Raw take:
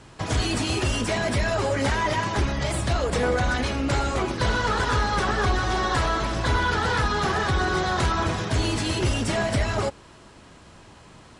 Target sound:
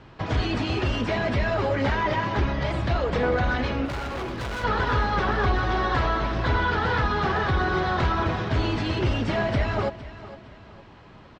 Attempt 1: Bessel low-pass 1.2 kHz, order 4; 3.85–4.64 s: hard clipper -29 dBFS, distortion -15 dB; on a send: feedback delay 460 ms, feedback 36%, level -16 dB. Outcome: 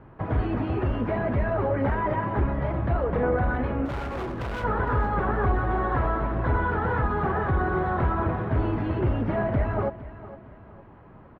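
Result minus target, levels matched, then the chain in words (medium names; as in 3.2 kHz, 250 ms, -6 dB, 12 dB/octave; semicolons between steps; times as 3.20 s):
4 kHz band -16.0 dB
Bessel low-pass 3.1 kHz, order 4; 3.85–4.64 s: hard clipper -29 dBFS, distortion -15 dB; on a send: feedback delay 460 ms, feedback 36%, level -16 dB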